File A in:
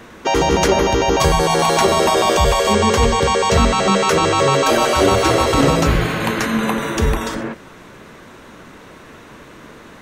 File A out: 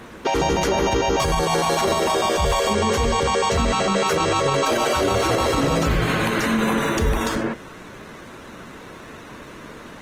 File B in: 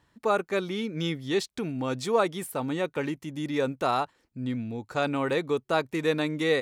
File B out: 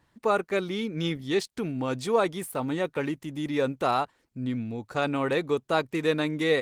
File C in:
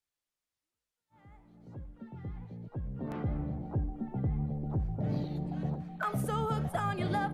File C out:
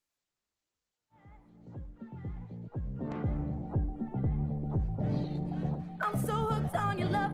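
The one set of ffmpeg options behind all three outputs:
-af "alimiter=limit=-12.5dB:level=0:latency=1:release=42,volume=1dB" -ar 48000 -c:a libopus -b:a 20k

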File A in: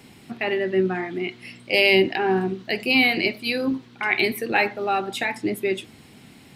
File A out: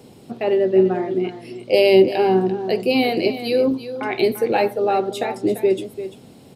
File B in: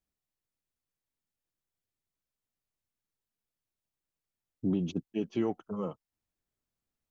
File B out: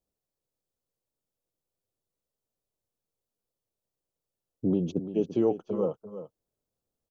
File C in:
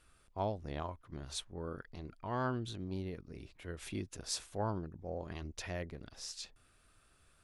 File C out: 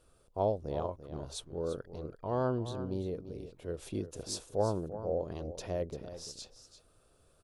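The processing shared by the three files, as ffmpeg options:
-af "equalizer=f=125:t=o:w=1:g=3,equalizer=f=500:t=o:w=1:g=11,equalizer=f=2k:t=o:w=1:g=-10,aecho=1:1:342:0.251"

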